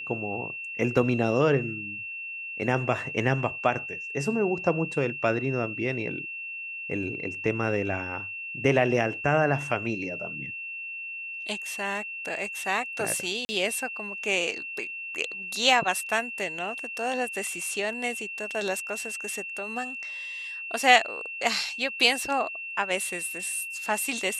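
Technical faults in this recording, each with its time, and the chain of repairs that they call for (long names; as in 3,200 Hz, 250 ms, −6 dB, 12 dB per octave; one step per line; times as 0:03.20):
whistle 2,700 Hz −34 dBFS
0:13.45–0:13.49: drop-out 40 ms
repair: notch filter 2,700 Hz, Q 30
repair the gap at 0:13.45, 40 ms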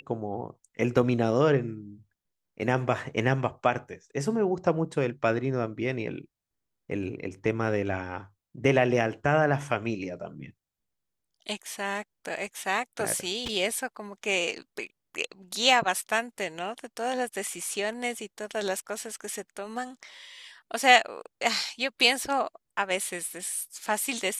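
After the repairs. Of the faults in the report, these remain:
none of them is left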